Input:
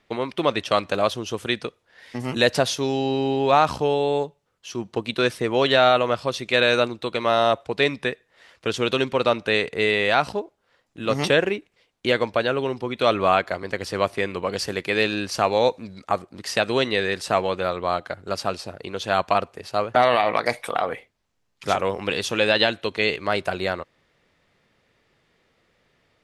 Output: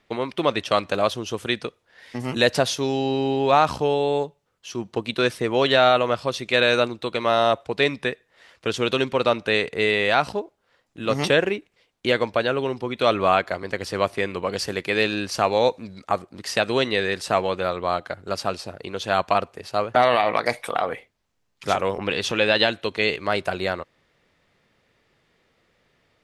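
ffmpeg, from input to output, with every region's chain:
-filter_complex "[0:a]asettb=1/sr,asplit=3[a][b][c];[a]atrim=end=21.984[d];[b]atrim=start=21.98:end=22.52,asetpts=PTS-STARTPTS,afade=t=in:d=0.004:c=qsin,afade=t=out:st=0.536:d=0.004:c=qsin,lowpass=f=2.3k:p=1,acompressor=mode=upward:threshold=-22dB:ratio=2.5:attack=3.2:release=140:knee=2.83:detection=peak,adynamicequalizer=threshold=0.0141:dfrequency=1700:dqfactor=0.7:tfrequency=1700:tqfactor=0.7:attack=5:release=100:ratio=0.375:range=2.5:mode=boostabove:tftype=highshelf[e];[c]atrim=start=22.516[f];[d][e]acrossfade=d=0.004:c1=hsin:c2=qsin[g];[g][f]acrossfade=d=0.004:c1=qsin:c2=hsin"

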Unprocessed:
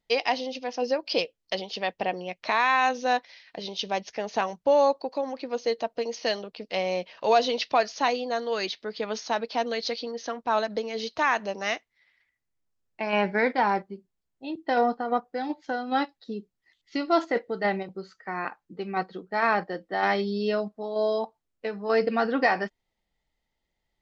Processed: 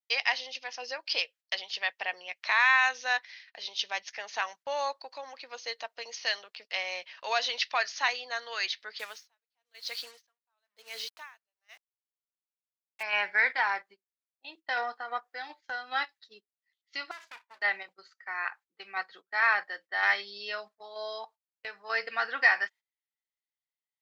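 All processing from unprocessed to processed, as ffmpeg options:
-filter_complex "[0:a]asettb=1/sr,asplit=3[a][b][c];[a]atrim=end=8.994[d];[b]atrim=start=8.99:end=13.03,asetpts=PTS-STARTPTS,afade=t=in:d=0.004:c=qsin,afade=t=out:st=4.036:d=0.004:c=qsin,acrusher=bits=6:mix=0:aa=0.5,aeval=exprs='val(0)*pow(10,-37*(0.5-0.5*cos(2*PI*1*n/s))/20)':c=same[e];[c]atrim=start=13.026[f];[d][e]acrossfade=d=0.004:c1=hsin:c2=qsin[g];[g][f]acrossfade=d=0.004:c1=qsin:c2=hsin,asettb=1/sr,asplit=3[h][i][j];[h]atrim=end=17.114[k];[i]atrim=start=17.11:end=17.62,asetpts=PTS-STARTPTS,afade=t=in:d=0.004:c=qsin,afade=t=out:st=0.506:d=0.004:c=qsin,acompressor=threshold=-33dB:ratio=5:attack=3.2:release=140:knee=1:detection=peak,aeval=exprs='(tanh(28.2*val(0)+0.5)-tanh(0.5))/28.2':c=same,aeval=exprs='abs(val(0))':c=same[l];[j]atrim=start=17.616[m];[k][l]acrossfade=d=0.004:c1=hsin:c2=qsin[n];[n][m]acrossfade=d=0.004:c1=qsin:c2=hsin,highpass=1.3k,agate=range=-16dB:threshold=-53dB:ratio=16:detection=peak,adynamicequalizer=threshold=0.00708:dfrequency=1800:dqfactor=2.1:tfrequency=1800:tqfactor=2.1:attack=5:release=100:ratio=0.375:range=3:mode=boostabove:tftype=bell"

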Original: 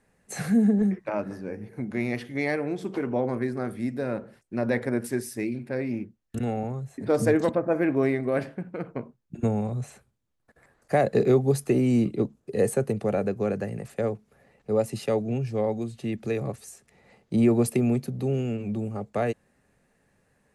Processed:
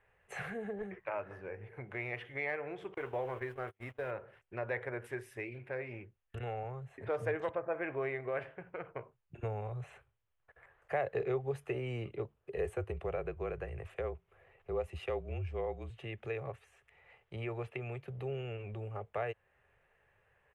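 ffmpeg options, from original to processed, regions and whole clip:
-filter_complex "[0:a]asettb=1/sr,asplit=3[a][b][c];[a]atrim=end=2.944[d];[b]atrim=start=2.94:end=4.11,asetpts=PTS-STARTPTS,afade=t=in:d=0.004:c=qsin,afade=t=out:st=1.166:d=0.004:c=qsin,aeval=exprs='val(0)+0.5*0.0075*sgn(val(0))':c=same,agate=range=-38dB:threshold=-31dB:ratio=16:release=100:detection=peak,highshelf=f=7k:g=9.5[e];[c]atrim=start=4.106[f];[d][e]acrossfade=d=0.004:c1=hsin:c2=qsin[g];[g][f]acrossfade=d=0.004:c1=qsin:c2=hsin,asettb=1/sr,asplit=3[h][i][j];[h]atrim=end=12.574[k];[i]atrim=start=12.57:end=15.9,asetpts=PTS-STARTPTS,afade=t=in:d=0.004:c=qsin,afade=t=out:st=3.326:d=0.004:c=qsin,equalizer=f=1.7k:w=4.9:g=-3.5,afreqshift=-38[l];[j]atrim=start=15.896[m];[k][l]acrossfade=d=0.004:c1=hsin:c2=qsin[n];[n][m]acrossfade=d=0.004:c1=qsin:c2=hsin,asettb=1/sr,asplit=3[o][p][q];[o]atrim=end=16.594[r];[p]atrim=start=16.59:end=18.08,asetpts=PTS-STARTPTS,afade=t=in:d=0.004:c=qsin,afade=t=out:st=1.486:d=0.004:c=qsin,acrossover=split=3800[s][t];[t]acompressor=threshold=-53dB:ratio=4:attack=1:release=60[u];[s][u]amix=inputs=2:normalize=0,equalizer=f=300:w=0.3:g=-5.5[v];[q]atrim=start=18.076[w];[r][v]acrossfade=d=0.004:c1=hsin:c2=qsin[x];[x][w]acrossfade=d=0.004:c1=qsin:c2=hsin,firequalizer=gain_entry='entry(100,0);entry(230,-22);entry(390,-2);entry(1000,3);entry(3000,4);entry(4400,-16)':delay=0.05:min_phase=1,acompressor=threshold=-40dB:ratio=1.5,volume=-3.5dB"

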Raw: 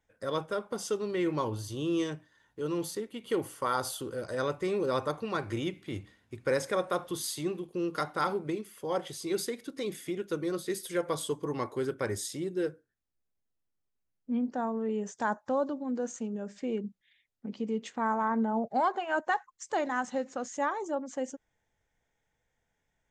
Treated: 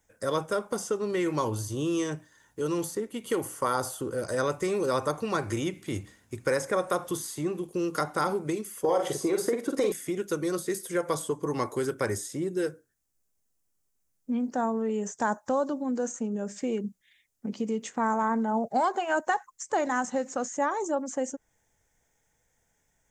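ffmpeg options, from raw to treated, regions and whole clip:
-filter_complex "[0:a]asettb=1/sr,asplit=3[a][b][c];[a]atrim=end=8.844[d];[b]atrim=start=8.84:end=9.92,asetpts=PTS-STARTPTS,afade=t=in:d=0.004:c=qsin,afade=t=out:st=1.076:d=0.004:c=qsin,equalizer=f=540:w=0.46:g=13.5,acompressor=threshold=-21dB:ratio=6:attack=3.2:release=140:knee=1:detection=peak,asplit=2[e][f];[f]adelay=47,volume=-5.5dB[g];[e][g]amix=inputs=2:normalize=0,atrim=end_sample=47628[h];[c]atrim=start=9.916[i];[d][h]acrossfade=d=0.004:c1=hsin:c2=qsin[j];[j][i]acrossfade=d=0.004:c1=qsin:c2=hsin,highshelf=f=5.1k:t=q:w=1.5:g=8,acrossover=split=730|2200[k][l][m];[k]acompressor=threshold=-32dB:ratio=4[n];[l]acompressor=threshold=-33dB:ratio=4[o];[m]acompressor=threshold=-45dB:ratio=4[p];[n][o][p]amix=inputs=3:normalize=0,volume=5.5dB"

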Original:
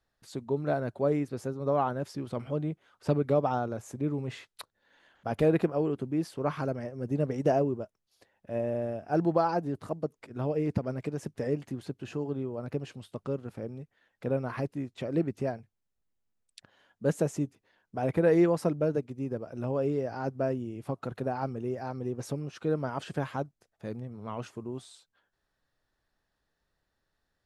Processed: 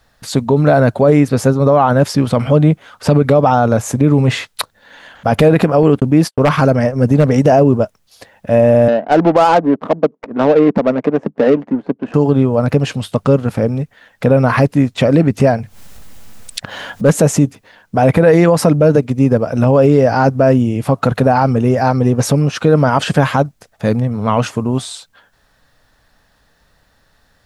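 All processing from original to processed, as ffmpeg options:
-filter_complex "[0:a]asettb=1/sr,asplit=3[a][b][c];[a]atrim=end=5.834[d];[b]atrim=start=5.83:end=7.26,asetpts=PTS-STARTPTS,afade=t=in:d=0.004:c=qsin,afade=t=out:st=1.426:d=0.004:c=qsin,agate=range=-56dB:threshold=-43dB:ratio=16:release=100:detection=peak,aeval=exprs='0.1*(abs(mod(val(0)/0.1+3,4)-2)-1)':c=same[e];[c]atrim=start=7.256[f];[d][e]acrossfade=d=0.004:c1=hsin:c2=qsin[g];[g][f]acrossfade=d=0.004:c1=qsin:c2=hsin,asettb=1/sr,asplit=3[h][i][j];[h]atrim=end=8.884[k];[i]atrim=start=8.88:end=12.14,asetpts=PTS-STARTPTS,afade=t=in:d=0.004:c=qsin,afade=t=out:st=3.256:d=0.004:c=qsin,highpass=f=220:w=0.5412,highpass=f=220:w=1.3066,adynamicsmooth=sensitivity=5:basefreq=540[l];[j]atrim=start=12.136[m];[k][l]acrossfade=d=0.004:c1=hsin:c2=qsin[n];[n][m]acrossfade=d=0.004:c1=qsin:c2=hsin,asettb=1/sr,asplit=3[o][p][q];[o]atrim=end=15.404[r];[p]atrim=start=15.4:end=17.21,asetpts=PTS-STARTPTS,afade=t=in:d=0.004:c=qsin,afade=t=out:st=1.806:d=0.004:c=qsin,acompressor=mode=upward:threshold=-38dB:ratio=2.5:attack=3.2:release=140:knee=2.83:detection=peak,asoftclip=type=hard:threshold=-18.5dB[s];[q]atrim=start=17.206[t];[r][s]acrossfade=d=0.004:c1=hsin:c2=qsin[u];[u][t]acrossfade=d=0.004:c1=qsin:c2=hsin,equalizer=f=360:w=5.6:g=-11.5,alimiter=level_in=25dB:limit=-1dB:release=50:level=0:latency=1,volume=-1dB"

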